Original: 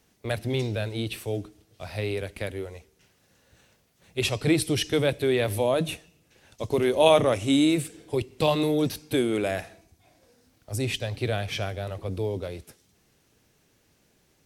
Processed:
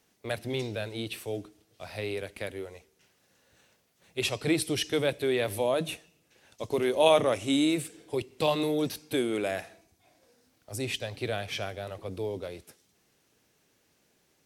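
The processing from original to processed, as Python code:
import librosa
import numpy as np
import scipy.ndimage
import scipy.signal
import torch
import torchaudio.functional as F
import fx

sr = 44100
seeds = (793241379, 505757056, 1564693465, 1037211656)

y = fx.low_shelf(x, sr, hz=130.0, db=-11.5)
y = y * 10.0 ** (-2.5 / 20.0)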